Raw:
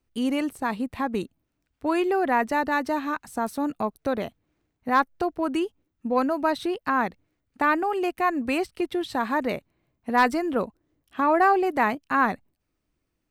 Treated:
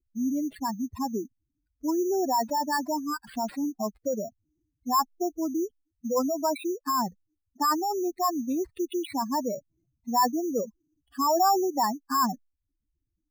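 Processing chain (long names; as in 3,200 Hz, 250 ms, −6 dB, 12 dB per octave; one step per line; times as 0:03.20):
expanding power law on the bin magnitudes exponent 3.6
decimation without filtering 7×
level −2 dB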